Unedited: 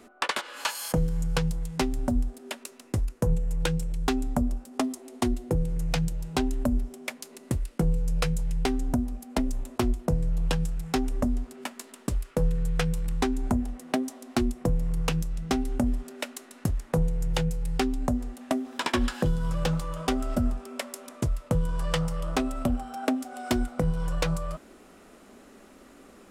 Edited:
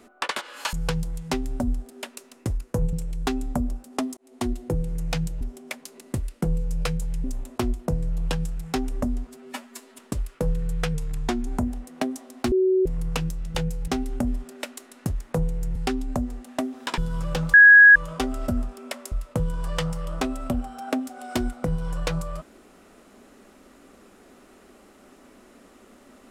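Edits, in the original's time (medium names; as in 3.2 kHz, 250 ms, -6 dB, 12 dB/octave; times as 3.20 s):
0.73–1.21 s: delete
3.41–3.74 s: delete
4.98–5.30 s: fade in
6.22–6.78 s: delete
8.61–9.44 s: delete
11.47–11.95 s: stretch 1.5×
12.90–13.39 s: speed 93%
14.44–14.78 s: bleep 375 Hz -16.5 dBFS
17.35–17.68 s: move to 15.47 s
18.90–19.28 s: delete
19.84 s: add tone 1.66 kHz -7 dBFS 0.42 s
21.00–21.27 s: delete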